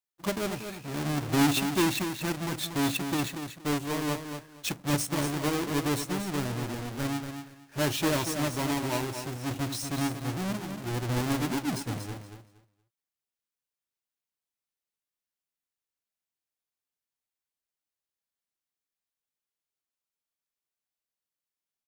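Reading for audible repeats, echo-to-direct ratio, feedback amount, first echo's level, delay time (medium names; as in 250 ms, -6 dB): 2, -8.0 dB, 20%, -8.0 dB, 235 ms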